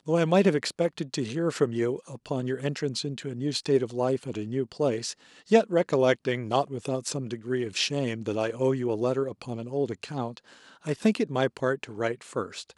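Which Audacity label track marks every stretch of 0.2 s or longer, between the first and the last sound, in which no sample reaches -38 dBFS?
5.120000	5.510000	silence
10.380000	10.860000	silence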